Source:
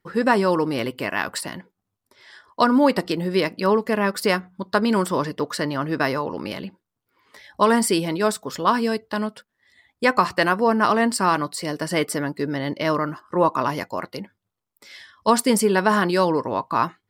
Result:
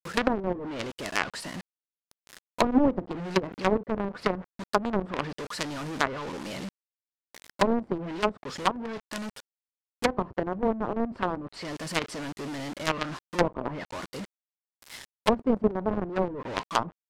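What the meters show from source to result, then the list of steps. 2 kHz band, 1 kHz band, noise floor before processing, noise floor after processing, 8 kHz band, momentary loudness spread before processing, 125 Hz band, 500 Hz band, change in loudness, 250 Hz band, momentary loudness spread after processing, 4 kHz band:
−8.5 dB, −9.0 dB, −82 dBFS, below −85 dBFS, −11.5 dB, 10 LU, −7.0 dB, −7.5 dB, −8.0 dB, −7.0 dB, 12 LU, −6.5 dB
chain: log-companded quantiser 2 bits
treble cut that deepens with the level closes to 500 Hz, closed at −9.5 dBFS
level −9 dB

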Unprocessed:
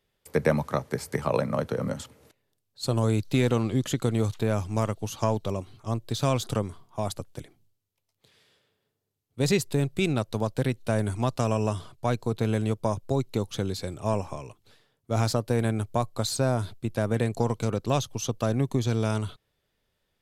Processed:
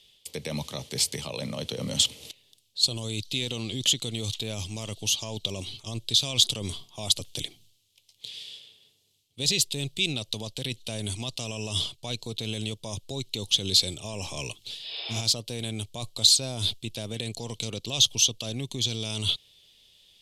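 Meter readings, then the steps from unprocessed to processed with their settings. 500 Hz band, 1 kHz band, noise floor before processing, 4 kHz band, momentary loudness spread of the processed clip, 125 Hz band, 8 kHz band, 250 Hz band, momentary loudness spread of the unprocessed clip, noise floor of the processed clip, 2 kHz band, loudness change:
−10.0 dB, −12.5 dB, −78 dBFS, +15.0 dB, 14 LU, −7.5 dB, +10.5 dB, −8.5 dB, 8 LU, −66 dBFS, −1.5 dB, +0.5 dB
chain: healed spectral selection 0:14.82–0:15.18, 330–5,300 Hz both
reversed playback
downward compressor 4 to 1, threshold −33 dBFS, peak gain reduction 14 dB
reversed playback
brickwall limiter −29 dBFS, peak gain reduction 8 dB
low-pass filter 11,000 Hz 12 dB per octave
high shelf with overshoot 2,200 Hz +13.5 dB, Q 3
level +5 dB

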